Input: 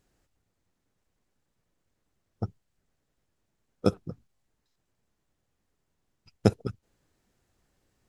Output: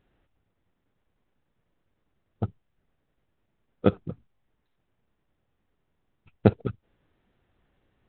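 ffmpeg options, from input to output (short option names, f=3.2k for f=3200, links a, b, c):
-af "volume=3dB" -ar 8000 -c:a adpcm_ima_wav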